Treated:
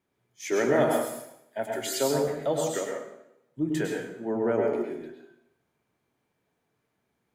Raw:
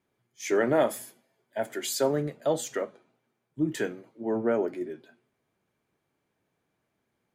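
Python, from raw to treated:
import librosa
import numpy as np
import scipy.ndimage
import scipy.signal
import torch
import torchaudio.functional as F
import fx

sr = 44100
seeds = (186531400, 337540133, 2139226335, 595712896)

y = fx.rev_plate(x, sr, seeds[0], rt60_s=0.77, hf_ratio=0.85, predelay_ms=90, drr_db=0.0)
y = F.gain(torch.from_numpy(y), -1.5).numpy()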